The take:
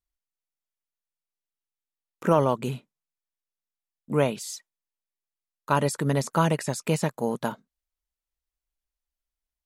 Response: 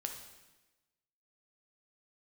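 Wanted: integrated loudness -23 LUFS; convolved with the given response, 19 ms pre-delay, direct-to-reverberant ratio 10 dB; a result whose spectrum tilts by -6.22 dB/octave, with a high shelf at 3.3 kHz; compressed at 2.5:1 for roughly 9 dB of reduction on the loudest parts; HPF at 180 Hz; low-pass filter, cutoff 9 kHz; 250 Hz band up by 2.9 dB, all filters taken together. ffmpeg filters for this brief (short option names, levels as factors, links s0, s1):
-filter_complex "[0:a]highpass=180,lowpass=9000,equalizer=f=250:t=o:g=6,highshelf=f=3300:g=-6.5,acompressor=threshold=0.0355:ratio=2.5,asplit=2[s0][s1];[1:a]atrim=start_sample=2205,adelay=19[s2];[s1][s2]afir=irnorm=-1:irlink=0,volume=0.335[s3];[s0][s3]amix=inputs=2:normalize=0,volume=2.99"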